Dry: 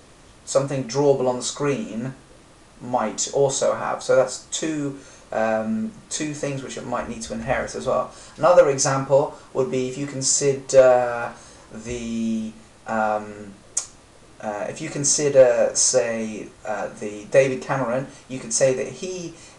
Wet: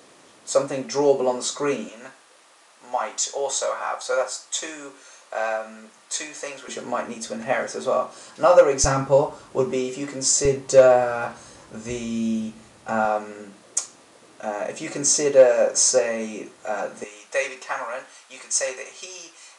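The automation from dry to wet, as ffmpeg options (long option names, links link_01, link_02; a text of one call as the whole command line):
ffmpeg -i in.wav -af "asetnsamples=nb_out_samples=441:pad=0,asendcmd='1.89 highpass f 720;6.68 highpass f 230;8.84 highpass f 57;9.71 highpass f 230;10.45 highpass f 72;13.05 highpass f 230;17.04 highpass f 930',highpass=260" out.wav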